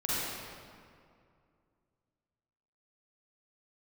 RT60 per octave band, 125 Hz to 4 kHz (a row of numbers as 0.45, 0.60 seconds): 2.8, 2.6, 2.4, 2.2, 1.8, 1.4 seconds